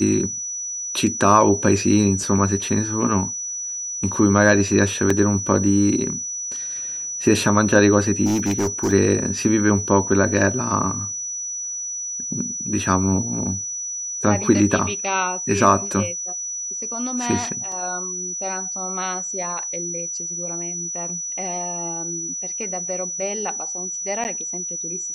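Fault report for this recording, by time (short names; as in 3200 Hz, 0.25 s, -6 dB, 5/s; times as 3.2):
tone 5900 Hz -26 dBFS
5.1 gap 3.7 ms
8.25–8.93 clipped -16.5 dBFS
17.72 gap 2.5 ms
24.24–24.25 gap 9.8 ms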